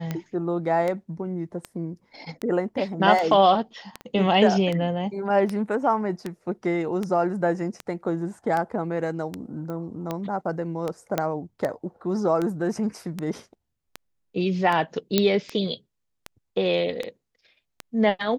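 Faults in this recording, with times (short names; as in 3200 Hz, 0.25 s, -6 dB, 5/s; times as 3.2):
tick 78 rpm -15 dBFS
4.01 pop -25 dBFS
9.7 pop -23 dBFS
11.18 pop -9 dBFS
15.18 pop -5 dBFS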